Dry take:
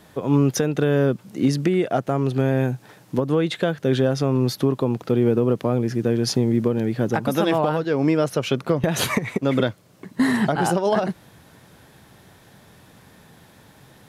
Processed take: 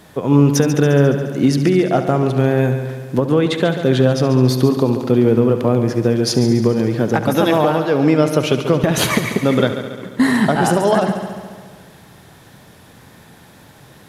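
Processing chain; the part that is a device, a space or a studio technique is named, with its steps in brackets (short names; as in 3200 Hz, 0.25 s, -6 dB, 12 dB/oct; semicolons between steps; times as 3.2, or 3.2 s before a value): multi-head tape echo (multi-head echo 70 ms, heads first and second, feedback 64%, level -13 dB; wow and flutter 10 cents); gain +5 dB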